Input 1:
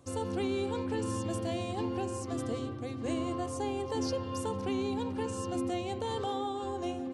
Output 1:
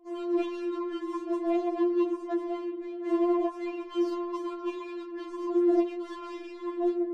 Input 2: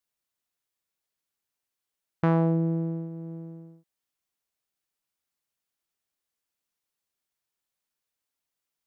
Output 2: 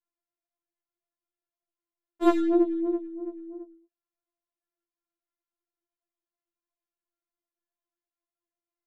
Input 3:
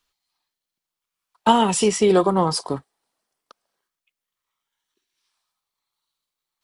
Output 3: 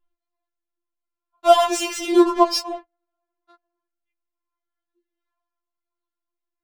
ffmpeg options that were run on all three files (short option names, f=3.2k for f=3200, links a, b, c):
-af "flanger=delay=22.5:depth=7.2:speed=3,adynamicsmooth=sensitivity=7.5:basefreq=1k,afftfilt=real='re*4*eq(mod(b,16),0)':imag='im*4*eq(mod(b,16),0)':win_size=2048:overlap=0.75,volume=8dB"